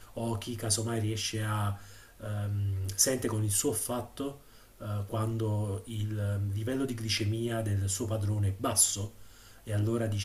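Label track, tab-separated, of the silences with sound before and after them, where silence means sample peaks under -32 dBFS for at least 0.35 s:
1.730000	2.230000	silence
4.290000	4.820000	silence
9.060000	9.690000	silence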